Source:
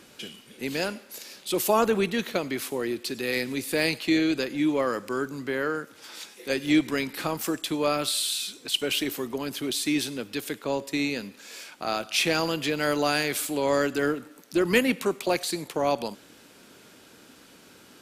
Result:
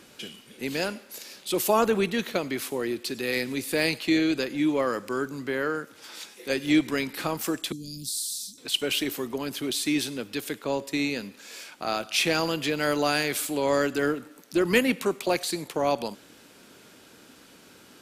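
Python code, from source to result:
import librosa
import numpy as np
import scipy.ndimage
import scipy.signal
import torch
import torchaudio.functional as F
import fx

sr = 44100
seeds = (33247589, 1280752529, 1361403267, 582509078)

y = fx.ellip_bandstop(x, sr, low_hz=230.0, high_hz=5100.0, order=3, stop_db=70, at=(7.72, 8.58))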